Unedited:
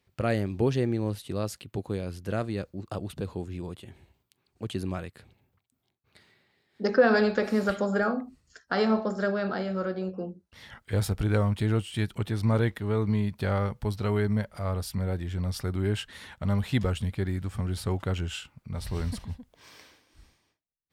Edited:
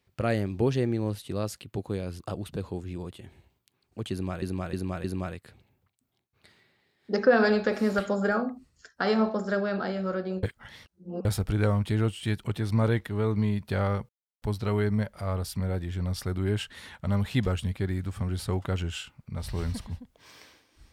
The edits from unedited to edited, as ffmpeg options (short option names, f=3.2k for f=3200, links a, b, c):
-filter_complex "[0:a]asplit=8[a][b][c][d][e][f][g][h];[a]atrim=end=2.202[i];[b]atrim=start=2.838:end=5.062[j];[c]atrim=start=4.748:end=5.062[k];[d]atrim=start=4.748:end=5.062[l];[e]atrim=start=4.748:end=10.142[m];[f]atrim=start=10.138:end=10.962,asetpts=PTS-STARTPTS,areverse[n];[g]atrim=start=10.958:end=13.8,asetpts=PTS-STARTPTS,afade=t=out:st=2.838:d=0.004:c=hsin,apad=pad_dur=0.33[o];[h]atrim=start=13.8,asetpts=PTS-STARTPTS,afade=t=in:d=0.004:c=hsin[p];[i][j]acrossfade=d=0.004:c1=hsin:c2=hsin[q];[q][k]acrossfade=d=0.004:c1=hsin:c2=hsin[r];[r][l]acrossfade=d=0.004:c1=hsin:c2=hsin[s];[s][m]acrossfade=d=0.004:c1=hsin:c2=hsin[t];[t][n]acrossfade=d=0.004:c1=hsin:c2=hsin[u];[o][p]concat=n=2:v=0:a=1[v];[u][v]acrossfade=d=0.004:c1=hsin:c2=hsin"